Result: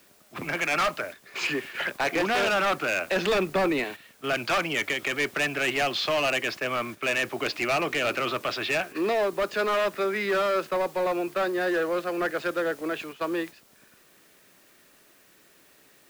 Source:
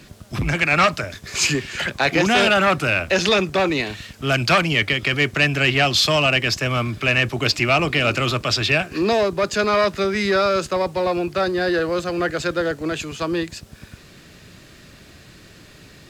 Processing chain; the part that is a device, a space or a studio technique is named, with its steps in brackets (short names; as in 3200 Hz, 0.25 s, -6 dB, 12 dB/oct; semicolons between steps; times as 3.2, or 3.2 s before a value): aircraft radio (BPF 340–2600 Hz; hard clip -18 dBFS, distortion -10 dB; white noise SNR 24 dB; gate -34 dBFS, range -8 dB); 3.16–3.84 low shelf 210 Hz +11 dB; gain -3 dB